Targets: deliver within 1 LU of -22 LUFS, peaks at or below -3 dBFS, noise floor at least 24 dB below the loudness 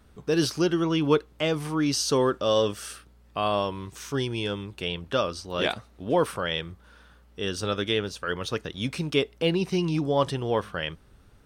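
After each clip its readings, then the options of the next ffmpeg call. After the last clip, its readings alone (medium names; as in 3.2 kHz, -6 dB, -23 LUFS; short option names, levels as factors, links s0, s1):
loudness -27.0 LUFS; peak level -8.5 dBFS; loudness target -22.0 LUFS
-> -af "volume=1.78"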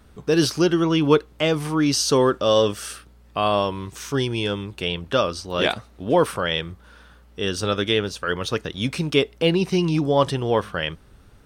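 loudness -22.0 LUFS; peak level -3.5 dBFS; noise floor -51 dBFS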